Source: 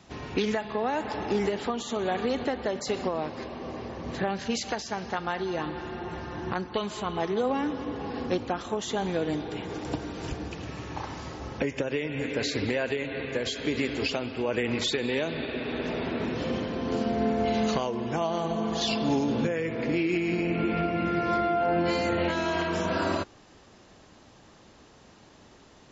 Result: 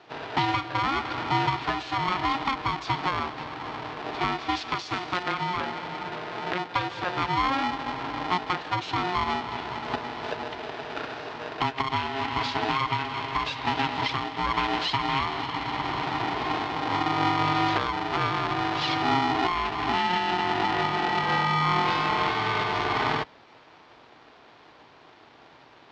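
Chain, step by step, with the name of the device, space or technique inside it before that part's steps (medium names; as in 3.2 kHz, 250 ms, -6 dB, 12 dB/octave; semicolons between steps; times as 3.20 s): ring modulator pedal into a guitar cabinet (polarity switched at an audio rate 540 Hz; cabinet simulation 78–4300 Hz, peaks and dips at 84 Hz -8 dB, 200 Hz -10 dB, 1 kHz +3 dB); 4.76–5.23 s: treble shelf 3.7 kHz +7 dB; trim +2 dB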